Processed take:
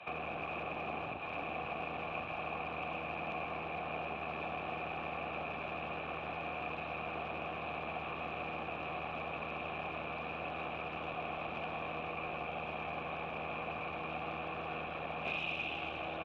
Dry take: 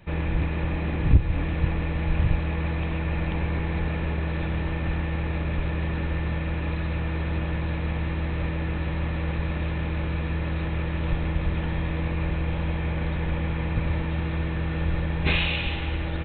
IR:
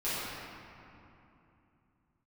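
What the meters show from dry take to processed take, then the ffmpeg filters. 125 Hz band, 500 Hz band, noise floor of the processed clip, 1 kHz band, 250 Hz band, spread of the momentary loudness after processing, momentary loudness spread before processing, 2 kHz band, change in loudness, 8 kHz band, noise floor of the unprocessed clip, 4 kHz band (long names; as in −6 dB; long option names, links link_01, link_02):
−25.5 dB, −6.5 dB, −42 dBFS, −1.5 dB, −17.0 dB, 1 LU, 4 LU, −7.0 dB, −12.5 dB, can't be measured, −28 dBFS, −11.0 dB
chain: -filter_complex "[0:a]acrossover=split=87|370[link_01][link_02][link_03];[link_01]acompressor=threshold=-39dB:ratio=4[link_04];[link_02]acompressor=threshold=-31dB:ratio=4[link_05];[link_03]acompressor=threshold=-46dB:ratio=4[link_06];[link_04][link_05][link_06]amix=inputs=3:normalize=0,asplit=2[link_07][link_08];[link_08]alimiter=level_in=5dB:limit=-24dB:level=0:latency=1,volume=-5dB,volume=-2dB[link_09];[link_07][link_09]amix=inputs=2:normalize=0,aeval=exprs='clip(val(0),-1,0.0237)':channel_layout=same,asplit=3[link_10][link_11][link_12];[link_10]bandpass=frequency=730:width_type=q:width=8,volume=0dB[link_13];[link_11]bandpass=frequency=1090:width_type=q:width=8,volume=-6dB[link_14];[link_12]bandpass=frequency=2440:width_type=q:width=8,volume=-9dB[link_15];[link_13][link_14][link_15]amix=inputs=3:normalize=0,asplit=8[link_16][link_17][link_18][link_19][link_20][link_21][link_22][link_23];[link_17]adelay=82,afreqshift=59,volume=-11dB[link_24];[link_18]adelay=164,afreqshift=118,volume=-15.6dB[link_25];[link_19]adelay=246,afreqshift=177,volume=-20.2dB[link_26];[link_20]adelay=328,afreqshift=236,volume=-24.7dB[link_27];[link_21]adelay=410,afreqshift=295,volume=-29.3dB[link_28];[link_22]adelay=492,afreqshift=354,volume=-33.9dB[link_29];[link_23]adelay=574,afreqshift=413,volume=-38.5dB[link_30];[link_16][link_24][link_25][link_26][link_27][link_28][link_29][link_30]amix=inputs=8:normalize=0,acrossover=split=230|1100[link_31][link_32][link_33];[link_33]acontrast=85[link_34];[link_31][link_32][link_34]amix=inputs=3:normalize=0,volume=9dB"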